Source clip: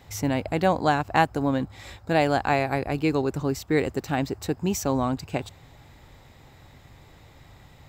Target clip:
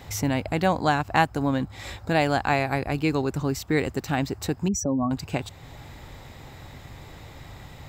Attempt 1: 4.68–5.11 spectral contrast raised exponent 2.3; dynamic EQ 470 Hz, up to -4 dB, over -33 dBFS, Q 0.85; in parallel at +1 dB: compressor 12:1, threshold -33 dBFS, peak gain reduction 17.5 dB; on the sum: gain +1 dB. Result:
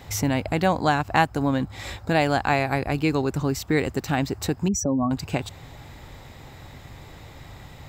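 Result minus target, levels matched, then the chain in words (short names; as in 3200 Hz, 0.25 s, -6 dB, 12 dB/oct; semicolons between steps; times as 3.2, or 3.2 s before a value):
compressor: peak gain reduction -8.5 dB
4.68–5.11 spectral contrast raised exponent 2.3; dynamic EQ 470 Hz, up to -4 dB, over -33 dBFS, Q 0.85; in parallel at +1 dB: compressor 12:1, threshold -42.5 dBFS, peak gain reduction 26.5 dB; on the sum: gain +1 dB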